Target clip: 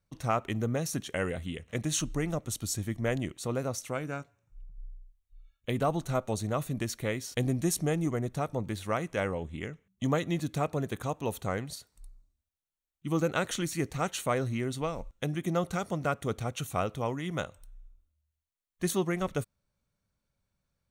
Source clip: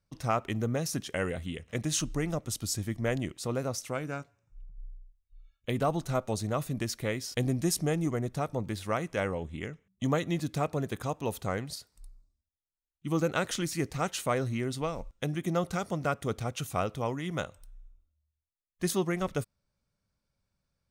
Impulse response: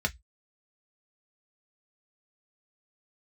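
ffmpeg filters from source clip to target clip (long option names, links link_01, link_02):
-af "bandreject=frequency=5000:width=6.5"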